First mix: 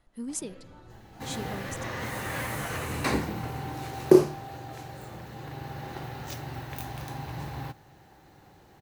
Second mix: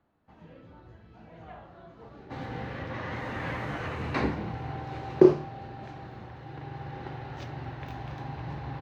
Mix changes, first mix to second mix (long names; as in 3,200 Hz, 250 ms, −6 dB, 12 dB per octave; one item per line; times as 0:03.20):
speech: muted
second sound: entry +1.10 s
master: add high-frequency loss of the air 230 metres